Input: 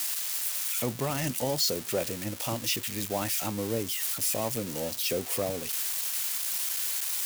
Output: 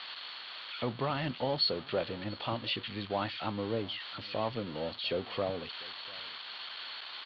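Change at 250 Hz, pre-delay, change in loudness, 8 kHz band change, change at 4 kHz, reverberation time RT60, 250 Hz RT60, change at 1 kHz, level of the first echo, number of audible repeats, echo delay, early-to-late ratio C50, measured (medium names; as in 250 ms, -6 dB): -3.5 dB, no reverb, -7.0 dB, under -40 dB, -1.5 dB, no reverb, no reverb, +0.5 dB, -22.5 dB, 1, 696 ms, no reverb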